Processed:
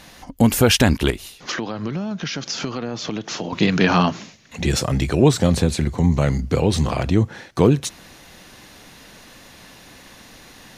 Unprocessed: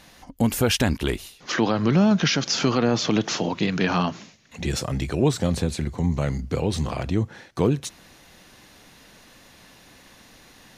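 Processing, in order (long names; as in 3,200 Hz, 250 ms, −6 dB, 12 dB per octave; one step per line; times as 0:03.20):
0:01.10–0:03.53: downward compressor 5 to 1, threshold −31 dBFS, peak gain reduction 15.5 dB
level +6 dB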